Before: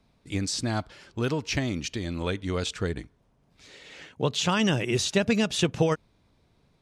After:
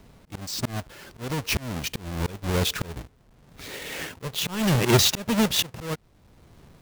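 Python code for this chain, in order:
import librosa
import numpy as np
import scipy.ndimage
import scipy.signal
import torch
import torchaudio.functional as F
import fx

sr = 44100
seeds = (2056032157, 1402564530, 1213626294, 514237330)

y = fx.halfwave_hold(x, sr)
y = fx.dynamic_eq(y, sr, hz=290.0, q=4.3, threshold_db=-38.0, ratio=4.0, max_db=-4)
y = fx.auto_swell(y, sr, attack_ms=779.0)
y = y * 10.0 ** (8.5 / 20.0)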